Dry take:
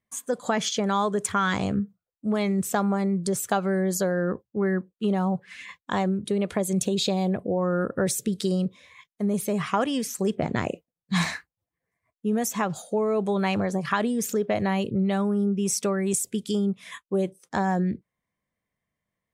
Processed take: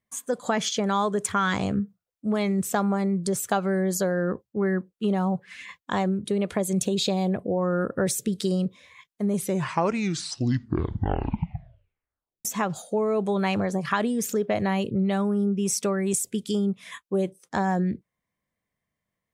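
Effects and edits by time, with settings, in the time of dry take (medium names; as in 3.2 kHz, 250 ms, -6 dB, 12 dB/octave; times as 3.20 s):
9.28 s: tape stop 3.17 s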